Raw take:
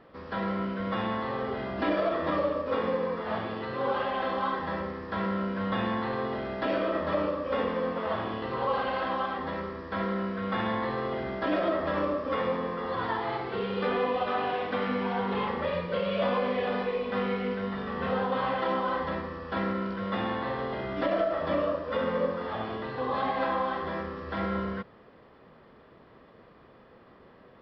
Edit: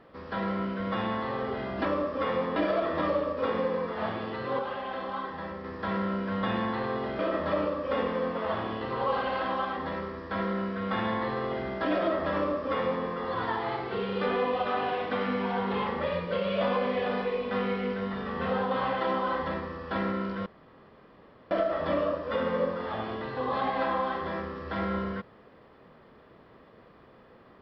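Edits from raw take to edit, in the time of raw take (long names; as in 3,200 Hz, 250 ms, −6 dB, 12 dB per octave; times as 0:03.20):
0:03.88–0:04.93: clip gain −5 dB
0:06.48–0:06.80: remove
0:11.96–0:12.67: duplicate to 0:01.85
0:20.07–0:21.12: fill with room tone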